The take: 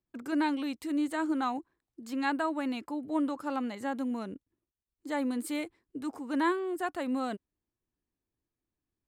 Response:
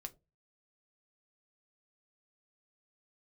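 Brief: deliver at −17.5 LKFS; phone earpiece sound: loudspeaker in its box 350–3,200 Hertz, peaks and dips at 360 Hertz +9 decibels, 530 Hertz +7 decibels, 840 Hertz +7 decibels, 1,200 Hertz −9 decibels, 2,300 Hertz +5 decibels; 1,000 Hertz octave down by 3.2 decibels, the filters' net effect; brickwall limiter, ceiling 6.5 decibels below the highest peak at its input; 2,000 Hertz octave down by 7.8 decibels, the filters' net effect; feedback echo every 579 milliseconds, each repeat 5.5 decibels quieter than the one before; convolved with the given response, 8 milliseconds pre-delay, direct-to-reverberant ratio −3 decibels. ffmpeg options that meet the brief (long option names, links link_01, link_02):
-filter_complex "[0:a]equalizer=frequency=1000:width_type=o:gain=-6.5,equalizer=frequency=2000:width_type=o:gain=-8,alimiter=level_in=3.5dB:limit=-24dB:level=0:latency=1,volume=-3.5dB,aecho=1:1:579|1158|1737|2316|2895|3474|4053:0.531|0.281|0.149|0.079|0.0419|0.0222|0.0118,asplit=2[link_01][link_02];[1:a]atrim=start_sample=2205,adelay=8[link_03];[link_02][link_03]afir=irnorm=-1:irlink=0,volume=7.5dB[link_04];[link_01][link_04]amix=inputs=2:normalize=0,highpass=350,equalizer=frequency=360:width_type=q:width=4:gain=9,equalizer=frequency=530:width_type=q:width=4:gain=7,equalizer=frequency=840:width_type=q:width=4:gain=7,equalizer=frequency=1200:width_type=q:width=4:gain=-9,equalizer=frequency=2300:width_type=q:width=4:gain=5,lowpass=frequency=3200:width=0.5412,lowpass=frequency=3200:width=1.3066,volume=12.5dB"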